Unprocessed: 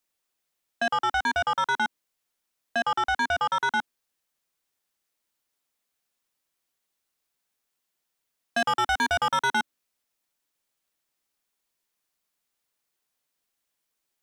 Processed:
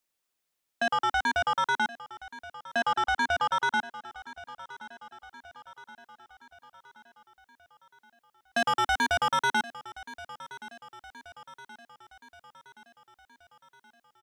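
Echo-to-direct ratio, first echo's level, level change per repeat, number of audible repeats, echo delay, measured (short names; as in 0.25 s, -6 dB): -15.5 dB, -17.0 dB, -5.0 dB, 4, 1.074 s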